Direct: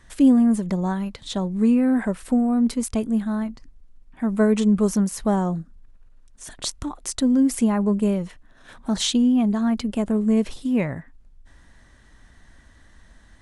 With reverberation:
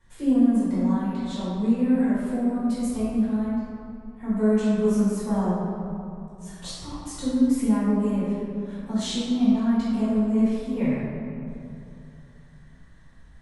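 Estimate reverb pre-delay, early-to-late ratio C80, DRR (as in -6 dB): 4 ms, -1.0 dB, -12.0 dB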